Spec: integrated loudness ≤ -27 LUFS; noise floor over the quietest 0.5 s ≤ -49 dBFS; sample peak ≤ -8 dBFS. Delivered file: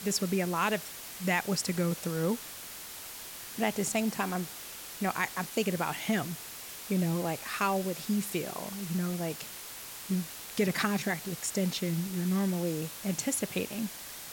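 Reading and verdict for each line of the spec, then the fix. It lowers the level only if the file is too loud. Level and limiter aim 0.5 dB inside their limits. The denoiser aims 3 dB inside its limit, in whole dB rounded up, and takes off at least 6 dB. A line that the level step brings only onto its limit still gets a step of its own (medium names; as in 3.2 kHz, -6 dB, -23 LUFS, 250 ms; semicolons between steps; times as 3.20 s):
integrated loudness -32.5 LUFS: pass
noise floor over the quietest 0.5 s -44 dBFS: fail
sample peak -15.0 dBFS: pass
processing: noise reduction 8 dB, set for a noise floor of -44 dBFS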